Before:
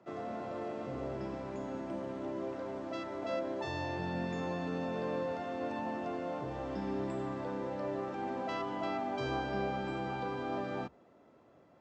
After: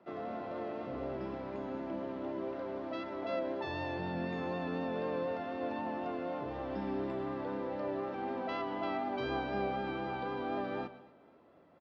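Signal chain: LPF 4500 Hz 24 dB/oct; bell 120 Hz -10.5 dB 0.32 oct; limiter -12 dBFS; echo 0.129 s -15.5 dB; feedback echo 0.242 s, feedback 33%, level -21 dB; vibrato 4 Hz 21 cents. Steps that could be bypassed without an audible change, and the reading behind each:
limiter -12 dBFS: input peak -24.0 dBFS

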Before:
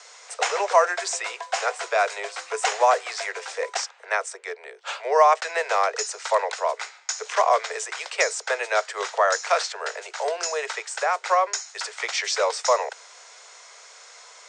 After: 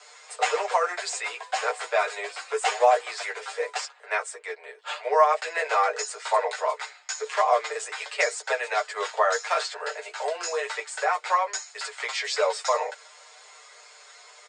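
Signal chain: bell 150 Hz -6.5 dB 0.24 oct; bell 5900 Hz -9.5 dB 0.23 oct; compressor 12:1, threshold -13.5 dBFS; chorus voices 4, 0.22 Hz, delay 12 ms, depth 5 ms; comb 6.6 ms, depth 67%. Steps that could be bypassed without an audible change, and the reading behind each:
bell 150 Hz: input band starts at 360 Hz

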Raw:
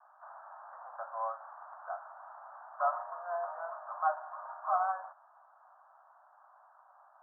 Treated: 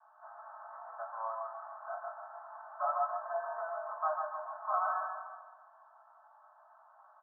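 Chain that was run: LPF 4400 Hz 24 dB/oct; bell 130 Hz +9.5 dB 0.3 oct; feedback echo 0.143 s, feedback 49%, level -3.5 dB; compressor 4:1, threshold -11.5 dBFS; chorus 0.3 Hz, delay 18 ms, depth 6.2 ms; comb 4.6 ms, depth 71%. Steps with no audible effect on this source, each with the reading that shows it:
LPF 4400 Hz: input band ends at 1700 Hz; bell 130 Hz: input band starts at 510 Hz; compressor, threshold -11.5 dBFS: input peak -18.0 dBFS

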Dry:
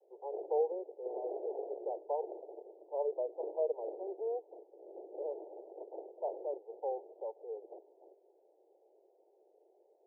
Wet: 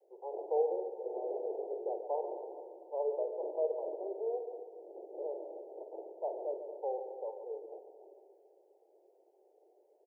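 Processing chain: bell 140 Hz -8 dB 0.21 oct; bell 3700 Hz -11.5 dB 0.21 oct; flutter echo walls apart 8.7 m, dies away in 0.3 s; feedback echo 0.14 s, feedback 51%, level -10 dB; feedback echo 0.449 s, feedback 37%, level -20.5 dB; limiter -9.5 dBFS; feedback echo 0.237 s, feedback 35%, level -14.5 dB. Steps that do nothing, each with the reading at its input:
bell 140 Hz: input band starts at 300 Hz; bell 3700 Hz: input band ends at 960 Hz; limiter -9.5 dBFS: input peak -21.0 dBFS

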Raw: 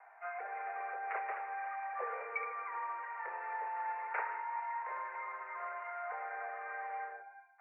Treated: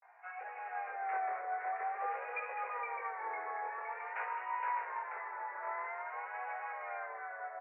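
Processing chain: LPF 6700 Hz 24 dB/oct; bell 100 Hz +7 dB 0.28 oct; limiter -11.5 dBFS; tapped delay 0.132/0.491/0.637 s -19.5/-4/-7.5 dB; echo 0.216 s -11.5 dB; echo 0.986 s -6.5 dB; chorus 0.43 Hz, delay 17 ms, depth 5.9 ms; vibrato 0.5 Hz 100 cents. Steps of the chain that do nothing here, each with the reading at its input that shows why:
LPF 6700 Hz: input band ends at 2600 Hz; bell 100 Hz: input band starts at 340 Hz; limiter -11.5 dBFS: input peak -25.5 dBFS

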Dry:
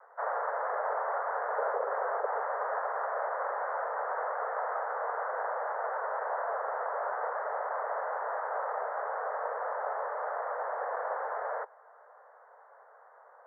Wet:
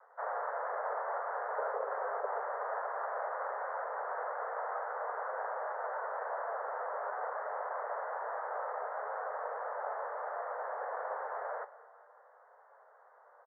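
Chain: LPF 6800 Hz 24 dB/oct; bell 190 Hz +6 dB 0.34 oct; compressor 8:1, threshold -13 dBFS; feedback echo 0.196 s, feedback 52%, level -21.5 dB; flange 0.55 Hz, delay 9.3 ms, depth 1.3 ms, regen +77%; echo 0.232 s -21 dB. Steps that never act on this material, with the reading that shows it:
LPF 6800 Hz: input band ends at 2200 Hz; bell 190 Hz: input band starts at 360 Hz; compressor, threshold -13 dBFS: input peak -19.5 dBFS

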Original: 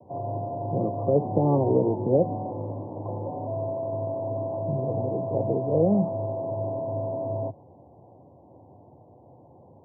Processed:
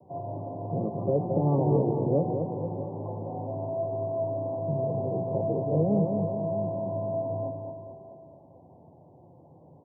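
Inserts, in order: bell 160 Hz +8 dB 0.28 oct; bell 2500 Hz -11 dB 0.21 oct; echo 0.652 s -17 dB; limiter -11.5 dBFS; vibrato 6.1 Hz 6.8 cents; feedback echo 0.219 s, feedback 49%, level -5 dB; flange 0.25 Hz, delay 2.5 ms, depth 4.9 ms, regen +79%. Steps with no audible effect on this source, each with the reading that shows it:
bell 2500 Hz: input band ends at 960 Hz

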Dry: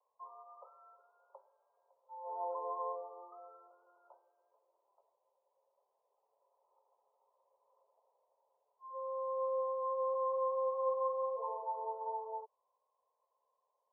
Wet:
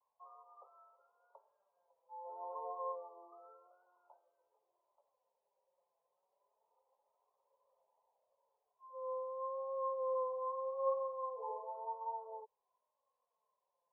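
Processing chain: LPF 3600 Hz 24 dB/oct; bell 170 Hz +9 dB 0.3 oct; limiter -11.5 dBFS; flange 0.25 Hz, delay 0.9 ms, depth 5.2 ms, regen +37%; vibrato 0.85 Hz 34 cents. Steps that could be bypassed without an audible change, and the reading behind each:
LPF 3600 Hz: input band ends at 1100 Hz; bell 170 Hz: input band starts at 430 Hz; limiter -11.5 dBFS: input peak -24.5 dBFS

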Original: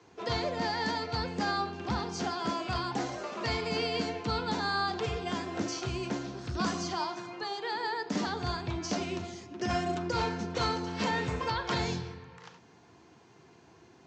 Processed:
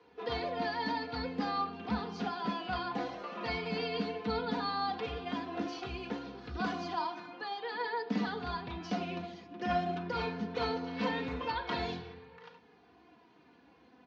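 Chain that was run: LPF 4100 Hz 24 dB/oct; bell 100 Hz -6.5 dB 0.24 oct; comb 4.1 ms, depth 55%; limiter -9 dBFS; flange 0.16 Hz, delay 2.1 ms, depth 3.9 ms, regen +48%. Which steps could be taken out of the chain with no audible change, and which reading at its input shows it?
limiter -9 dBFS: input peak -15.5 dBFS

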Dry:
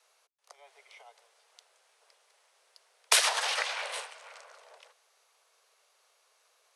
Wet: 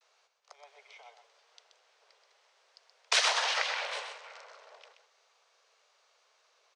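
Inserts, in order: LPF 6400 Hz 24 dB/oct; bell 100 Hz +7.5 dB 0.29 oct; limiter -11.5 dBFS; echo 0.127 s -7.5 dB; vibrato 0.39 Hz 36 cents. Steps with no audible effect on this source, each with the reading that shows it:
bell 100 Hz: input band starts at 340 Hz

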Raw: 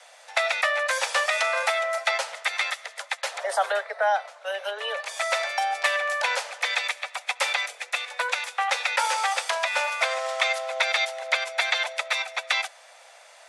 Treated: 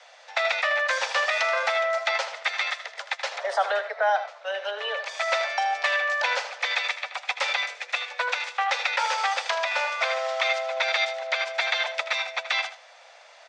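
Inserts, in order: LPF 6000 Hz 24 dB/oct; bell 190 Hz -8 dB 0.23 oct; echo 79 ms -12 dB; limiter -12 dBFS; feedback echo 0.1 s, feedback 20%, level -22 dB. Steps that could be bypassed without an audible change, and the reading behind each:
bell 190 Hz: input band starts at 380 Hz

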